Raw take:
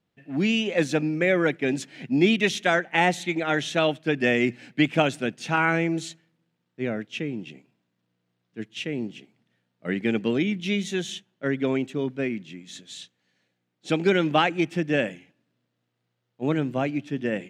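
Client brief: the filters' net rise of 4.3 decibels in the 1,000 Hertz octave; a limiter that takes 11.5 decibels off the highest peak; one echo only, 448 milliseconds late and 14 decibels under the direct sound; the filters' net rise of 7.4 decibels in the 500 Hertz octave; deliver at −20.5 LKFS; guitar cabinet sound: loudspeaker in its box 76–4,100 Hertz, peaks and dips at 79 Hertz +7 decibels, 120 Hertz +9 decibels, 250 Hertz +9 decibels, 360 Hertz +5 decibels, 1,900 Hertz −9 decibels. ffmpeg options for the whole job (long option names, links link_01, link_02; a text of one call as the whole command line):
ffmpeg -i in.wav -af "equalizer=frequency=500:width_type=o:gain=5.5,equalizer=frequency=1000:width_type=o:gain=4,alimiter=limit=-14dB:level=0:latency=1,highpass=76,equalizer=frequency=79:width_type=q:width=4:gain=7,equalizer=frequency=120:width_type=q:width=4:gain=9,equalizer=frequency=250:width_type=q:width=4:gain=9,equalizer=frequency=360:width_type=q:width=4:gain=5,equalizer=frequency=1900:width_type=q:width=4:gain=-9,lowpass=frequency=4100:width=0.5412,lowpass=frequency=4100:width=1.3066,aecho=1:1:448:0.2,volume=1.5dB" out.wav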